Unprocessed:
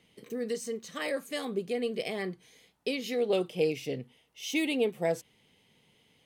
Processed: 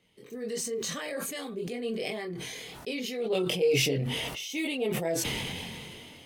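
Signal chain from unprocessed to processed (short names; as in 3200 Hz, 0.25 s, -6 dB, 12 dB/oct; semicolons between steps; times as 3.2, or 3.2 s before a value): chorus voices 4, 0.51 Hz, delay 23 ms, depth 1.7 ms; sustainer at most 21 dB/s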